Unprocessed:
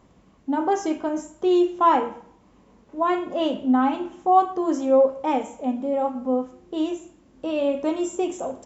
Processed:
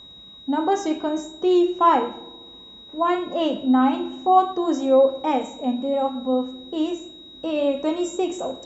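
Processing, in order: vibrato 5.4 Hz 20 cents; whine 3800 Hz -43 dBFS; dark delay 66 ms, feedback 77%, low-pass 460 Hz, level -17 dB; gain +1 dB

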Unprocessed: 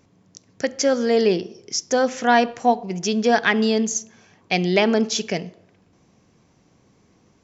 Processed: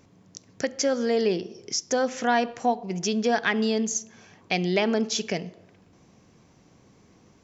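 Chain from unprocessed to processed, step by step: compressor 1.5:1, threshold -34 dBFS, peak gain reduction 8.5 dB; gain +1.5 dB

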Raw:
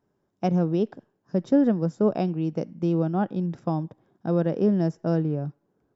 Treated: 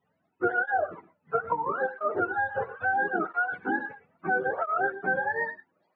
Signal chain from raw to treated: spectrum mirrored in octaves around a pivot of 510 Hz; LPF 4300 Hz; compressor, threshold -25 dBFS, peak gain reduction 8.5 dB; non-linear reverb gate 0.14 s rising, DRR 12 dB; tape flanging out of phase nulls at 0.75 Hz, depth 3.4 ms; gain +5 dB

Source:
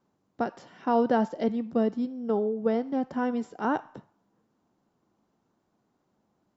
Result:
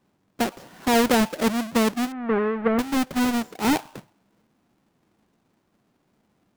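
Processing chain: half-waves squared off; 2.12–2.79 LPF 2000 Hz 24 dB/oct; gain +1 dB

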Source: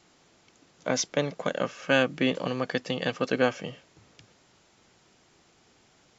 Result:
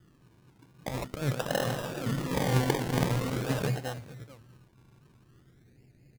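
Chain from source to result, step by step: notches 50/100/150/200/250 Hz; feedback echo 0.443 s, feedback 23%, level -18.5 dB; negative-ratio compressor -33 dBFS, ratio -1; low-pass opened by the level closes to 850 Hz, open at -28 dBFS; thirty-one-band EQ 125 Hz +11 dB, 1600 Hz +8 dB, 4000 Hz +5 dB; low-pass opened by the level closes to 300 Hz, open at -28 dBFS; low shelf 130 Hz +8.5 dB; 1.44–3.63 reverse bouncing-ball echo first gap 50 ms, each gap 1.5×, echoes 5; decimation with a swept rate 27×, swing 60% 0.46 Hz; record warp 78 rpm, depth 160 cents; gain -2 dB

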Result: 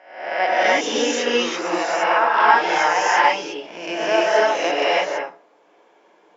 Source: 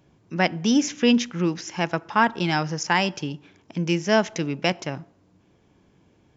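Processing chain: spectral swells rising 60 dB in 0.68 s; HPF 560 Hz 24 dB/oct; tilt -4 dB/oct; in parallel at +2 dB: compressor, threshold -29 dBFS, peak gain reduction 15 dB; on the sum: non-linear reverb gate 0.36 s rising, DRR -7.5 dB; gain -4 dB

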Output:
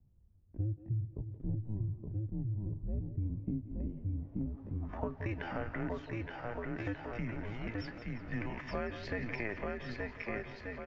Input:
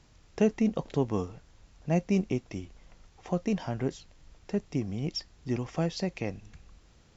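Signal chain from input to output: dynamic EQ 170 Hz, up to -5 dB, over -41 dBFS, Q 2.7; low-pass sweep 230 Hz -> 2000 Hz, 2.07–3.53; bouncing-ball echo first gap 0.58 s, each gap 0.75×, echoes 5; tempo 0.66×; split-band echo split 370 Hz, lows 0.293 s, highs 0.174 s, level -14 dB; frequency shift -110 Hz; low shelf 380 Hz -8 dB; compressor 6:1, threshold -32 dBFS, peak gain reduction 9.5 dB

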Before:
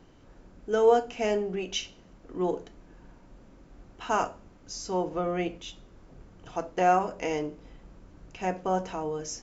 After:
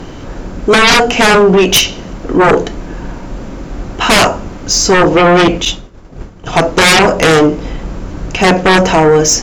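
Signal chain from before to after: sine folder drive 18 dB, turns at -10 dBFS; 5.65–6.53 expander -20 dBFS; gain +6.5 dB

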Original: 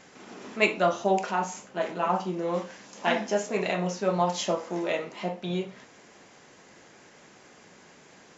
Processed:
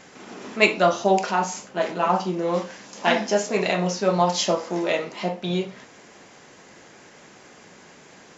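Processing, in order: dynamic EQ 4800 Hz, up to +6 dB, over -54 dBFS, Q 2; gain +5 dB

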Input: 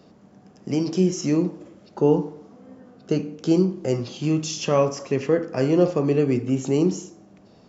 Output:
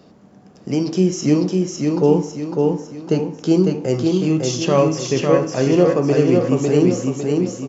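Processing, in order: feedback echo 0.553 s, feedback 43%, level -3 dB; gain +3.5 dB

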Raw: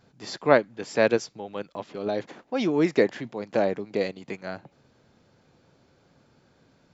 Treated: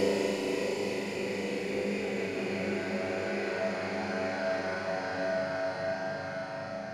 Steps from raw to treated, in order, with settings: self-modulated delay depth 0.61 ms; flutter echo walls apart 6.8 m, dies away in 0.89 s; Paulstretch 13×, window 0.50 s, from 4.17

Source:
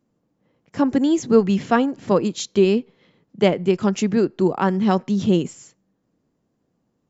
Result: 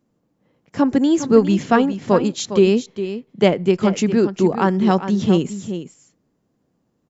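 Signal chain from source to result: echo 0.407 s -11 dB; gain +2 dB

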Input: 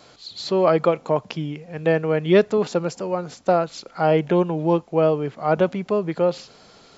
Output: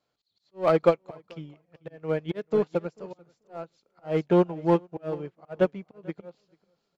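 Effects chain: high shelf 4700 Hz -5 dB; in parallel at -11 dB: wavefolder -16.5 dBFS; on the sum: auto swell 0.187 s; feedback echo 0.44 s, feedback 29%, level -12 dB; on a send at -22.5 dB: reverb RT60 0.75 s, pre-delay 3 ms; on the sum: upward expander 2.5:1, over -34 dBFS

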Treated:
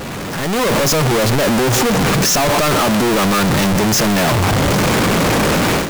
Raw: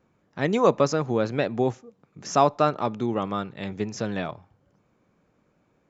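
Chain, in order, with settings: infinite clipping; AGC gain up to 12.5 dB

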